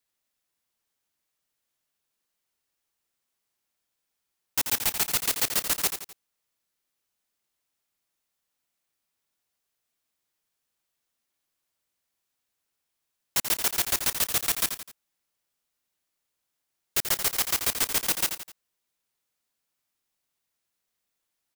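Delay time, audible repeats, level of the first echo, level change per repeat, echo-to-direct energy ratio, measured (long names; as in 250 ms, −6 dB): 85 ms, 3, −8.5 dB, −7.0 dB, −7.5 dB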